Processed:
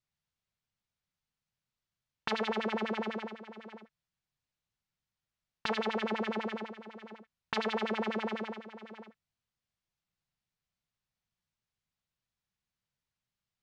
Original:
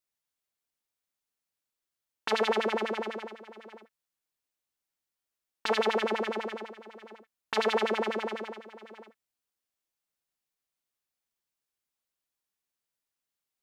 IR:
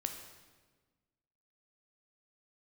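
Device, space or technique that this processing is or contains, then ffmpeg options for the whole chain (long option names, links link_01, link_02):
jukebox: -af "lowpass=5400,lowshelf=frequency=220:width_type=q:width=1.5:gain=11,acompressor=threshold=-29dB:ratio=4"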